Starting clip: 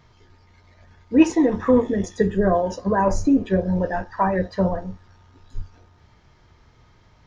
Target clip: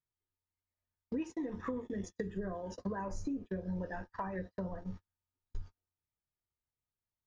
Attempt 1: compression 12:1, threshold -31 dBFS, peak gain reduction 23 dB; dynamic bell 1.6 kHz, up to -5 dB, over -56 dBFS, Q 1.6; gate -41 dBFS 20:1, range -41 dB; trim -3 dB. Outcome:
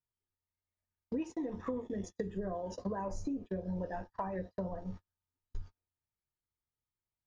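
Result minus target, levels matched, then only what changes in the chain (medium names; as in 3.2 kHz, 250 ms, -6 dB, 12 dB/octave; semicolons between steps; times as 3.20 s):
2 kHz band -5.0 dB
change: dynamic bell 680 Hz, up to -5 dB, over -56 dBFS, Q 1.6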